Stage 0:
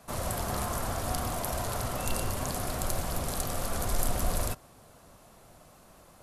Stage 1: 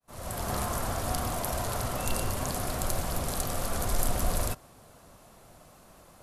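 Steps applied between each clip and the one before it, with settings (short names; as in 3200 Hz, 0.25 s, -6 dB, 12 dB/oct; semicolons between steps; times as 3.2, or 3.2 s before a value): opening faded in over 0.51 s; gain +1 dB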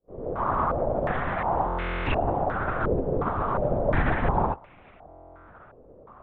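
LPC vocoder at 8 kHz whisper; stuck buffer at 1.67/5.08, samples 1024, times 16; stepped low-pass 2.8 Hz 470–2300 Hz; gain +2 dB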